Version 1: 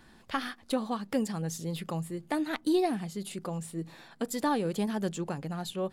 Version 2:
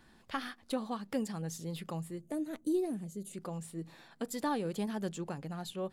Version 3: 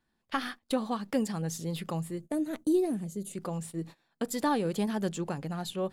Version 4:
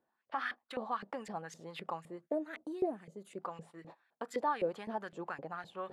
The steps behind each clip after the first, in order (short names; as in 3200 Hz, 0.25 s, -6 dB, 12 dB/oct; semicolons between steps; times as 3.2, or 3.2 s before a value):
spectral gain 2.2–3.34, 660–5800 Hz -12 dB; gain -5 dB
gate -48 dBFS, range -22 dB; gain +5.5 dB
reverse; upward compressor, threshold -37 dBFS; reverse; limiter -22.5 dBFS, peak gain reduction 6 dB; LFO band-pass saw up 3.9 Hz 460–2200 Hz; gain +4.5 dB